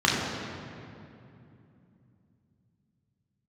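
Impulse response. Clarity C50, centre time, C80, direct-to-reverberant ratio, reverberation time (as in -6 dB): 0.0 dB, 0.118 s, 1.5 dB, -4.5 dB, 2.7 s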